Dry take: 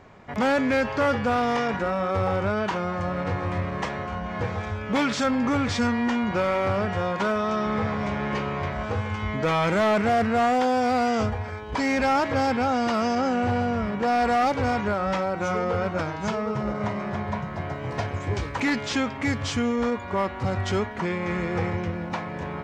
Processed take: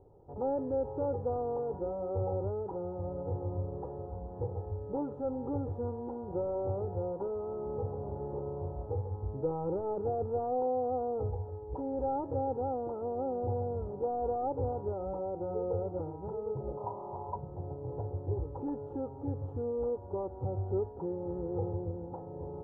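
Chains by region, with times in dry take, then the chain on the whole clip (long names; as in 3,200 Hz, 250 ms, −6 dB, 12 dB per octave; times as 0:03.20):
0:16.77–0:17.36: low-pass with resonance 1,000 Hz, resonance Q 6.6 + low-shelf EQ 410 Hz −8 dB
whole clip: inverse Chebyshev low-pass filter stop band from 1,900 Hz, stop band 50 dB; comb filter 2.3 ms, depth 78%; level −9 dB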